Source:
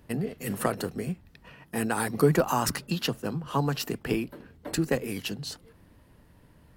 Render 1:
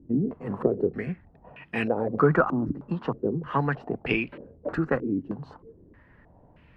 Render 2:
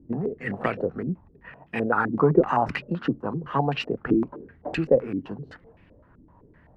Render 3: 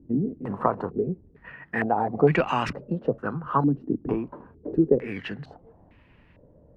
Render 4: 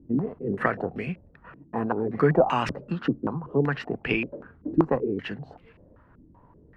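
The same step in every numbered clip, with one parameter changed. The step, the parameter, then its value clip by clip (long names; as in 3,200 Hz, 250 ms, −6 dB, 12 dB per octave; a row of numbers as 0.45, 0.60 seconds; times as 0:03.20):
low-pass on a step sequencer, speed: 3.2, 7.8, 2.2, 5.2 Hertz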